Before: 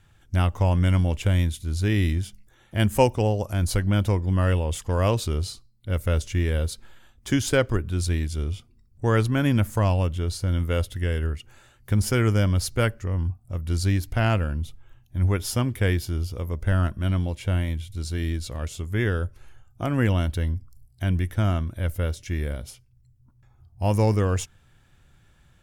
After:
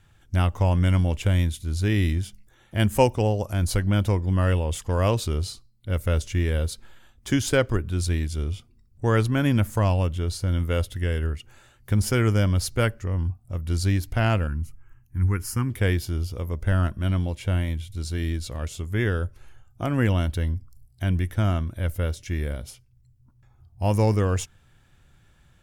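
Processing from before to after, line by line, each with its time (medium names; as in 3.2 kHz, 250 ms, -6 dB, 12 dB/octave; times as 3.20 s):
14.47–15.70 s: static phaser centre 1.5 kHz, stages 4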